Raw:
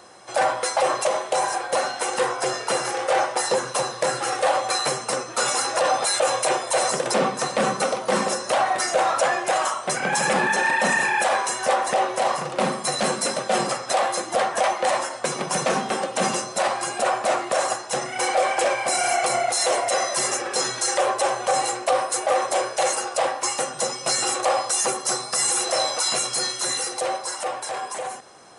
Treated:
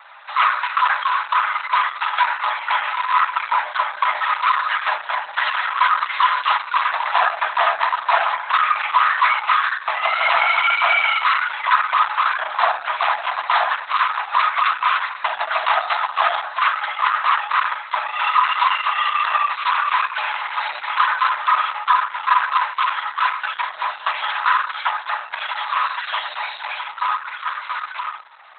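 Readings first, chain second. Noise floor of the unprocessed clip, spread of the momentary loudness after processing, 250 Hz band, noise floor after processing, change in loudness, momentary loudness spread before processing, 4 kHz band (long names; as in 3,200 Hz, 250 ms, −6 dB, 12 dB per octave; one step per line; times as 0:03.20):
−36 dBFS, 8 LU, below −25 dB, −35 dBFS, +3.5 dB, 4 LU, +0.5 dB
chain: frequency shifter +480 Hz
level +6.5 dB
Opus 8 kbit/s 48,000 Hz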